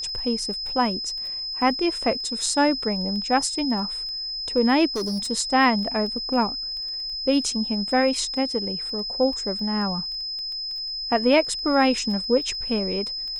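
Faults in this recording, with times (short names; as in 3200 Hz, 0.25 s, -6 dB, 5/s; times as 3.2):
crackle 12/s -32 dBFS
tone 5100 Hz -28 dBFS
4.96–5.31 clipped -23 dBFS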